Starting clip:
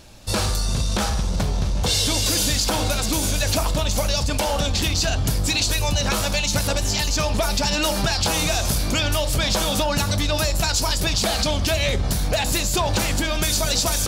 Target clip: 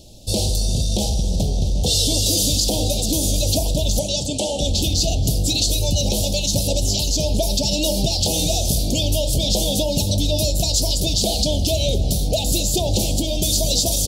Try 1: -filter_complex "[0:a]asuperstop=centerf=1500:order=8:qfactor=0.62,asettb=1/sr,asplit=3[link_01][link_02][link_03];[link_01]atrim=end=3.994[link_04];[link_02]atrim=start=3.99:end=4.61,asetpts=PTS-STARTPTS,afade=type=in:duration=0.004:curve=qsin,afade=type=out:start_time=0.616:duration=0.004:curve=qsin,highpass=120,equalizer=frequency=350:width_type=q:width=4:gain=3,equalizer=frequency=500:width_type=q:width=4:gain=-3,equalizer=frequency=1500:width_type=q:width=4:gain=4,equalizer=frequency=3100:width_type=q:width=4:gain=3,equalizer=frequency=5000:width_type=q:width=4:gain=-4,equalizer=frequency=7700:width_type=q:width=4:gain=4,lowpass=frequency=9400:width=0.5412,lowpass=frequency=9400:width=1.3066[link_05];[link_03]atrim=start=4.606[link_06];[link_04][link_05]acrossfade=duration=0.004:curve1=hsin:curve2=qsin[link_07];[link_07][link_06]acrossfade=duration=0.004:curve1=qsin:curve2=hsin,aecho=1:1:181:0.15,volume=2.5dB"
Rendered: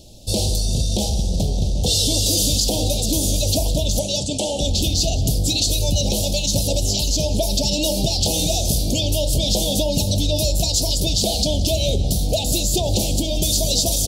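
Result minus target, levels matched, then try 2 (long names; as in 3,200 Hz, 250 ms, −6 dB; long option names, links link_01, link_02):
echo 92 ms early
-filter_complex "[0:a]asuperstop=centerf=1500:order=8:qfactor=0.62,asettb=1/sr,asplit=3[link_01][link_02][link_03];[link_01]atrim=end=3.994[link_04];[link_02]atrim=start=3.99:end=4.61,asetpts=PTS-STARTPTS,afade=type=in:duration=0.004:curve=qsin,afade=type=out:start_time=0.616:duration=0.004:curve=qsin,highpass=120,equalizer=frequency=350:width_type=q:width=4:gain=3,equalizer=frequency=500:width_type=q:width=4:gain=-3,equalizer=frequency=1500:width_type=q:width=4:gain=4,equalizer=frequency=3100:width_type=q:width=4:gain=3,equalizer=frequency=5000:width_type=q:width=4:gain=-4,equalizer=frequency=7700:width_type=q:width=4:gain=4,lowpass=frequency=9400:width=0.5412,lowpass=frequency=9400:width=1.3066[link_05];[link_03]atrim=start=4.606[link_06];[link_04][link_05]acrossfade=duration=0.004:curve1=hsin:curve2=qsin[link_07];[link_07][link_06]acrossfade=duration=0.004:curve1=qsin:curve2=hsin,aecho=1:1:273:0.15,volume=2.5dB"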